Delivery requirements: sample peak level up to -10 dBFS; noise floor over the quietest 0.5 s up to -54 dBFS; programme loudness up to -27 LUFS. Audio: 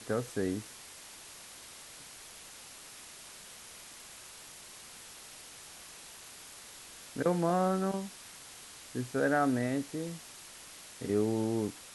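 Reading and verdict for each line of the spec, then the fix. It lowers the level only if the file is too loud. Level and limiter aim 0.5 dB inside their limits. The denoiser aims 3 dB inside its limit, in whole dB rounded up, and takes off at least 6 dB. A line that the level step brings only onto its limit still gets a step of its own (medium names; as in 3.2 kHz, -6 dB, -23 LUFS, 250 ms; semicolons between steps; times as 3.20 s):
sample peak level -17.0 dBFS: pass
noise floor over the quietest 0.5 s -50 dBFS: fail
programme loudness -32.5 LUFS: pass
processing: noise reduction 7 dB, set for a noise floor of -50 dBFS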